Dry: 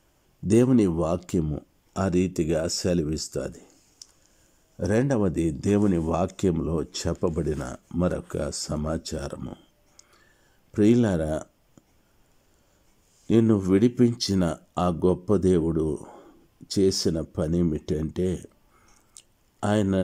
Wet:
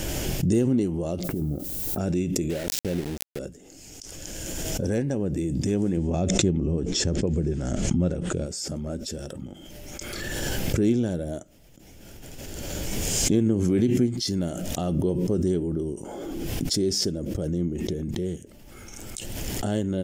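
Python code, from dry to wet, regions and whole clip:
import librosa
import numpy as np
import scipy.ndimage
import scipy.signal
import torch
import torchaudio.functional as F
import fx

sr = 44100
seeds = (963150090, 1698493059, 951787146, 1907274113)

y = fx.over_compress(x, sr, threshold_db=-26.0, ratio=-0.5, at=(1.23, 1.98), fade=0.02)
y = fx.lowpass(y, sr, hz=1600.0, slope=24, at=(1.23, 1.98), fade=0.02)
y = fx.dmg_noise_colour(y, sr, seeds[0], colour='violet', level_db=-53.0, at=(1.23, 1.98), fade=0.02)
y = fx.chain(y, sr, fx.high_shelf(hz=3400.0, db=-7.5),
    fx.sample_gate(floor_db=-27.0), at=(2.5, 3.39))
y = fx.chain(y, sr, fx.lowpass(hz=8000.0, slope=24),
    fx.low_shelf(hz=230.0, db=7.5), at=(5.97, 8.46))
y = fx.peak_eq(y, sr, hz=1100.0, db=-14.0, octaves=0.76)
y = fx.pre_swell(y, sr, db_per_s=20.0)
y = F.gain(torch.from_numpy(y), -3.5).numpy()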